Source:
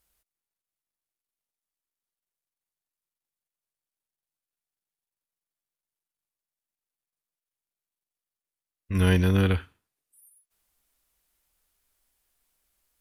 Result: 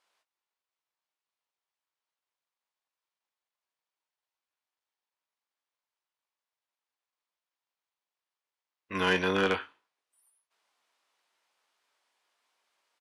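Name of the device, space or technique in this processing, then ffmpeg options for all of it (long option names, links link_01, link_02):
intercom: -filter_complex "[0:a]highpass=470,lowpass=4500,equalizer=frequency=980:width_type=o:width=0.53:gain=5,asoftclip=type=tanh:threshold=-20dB,asplit=2[link_01][link_02];[link_02]adelay=21,volume=-9dB[link_03];[link_01][link_03]amix=inputs=2:normalize=0,volume=4dB"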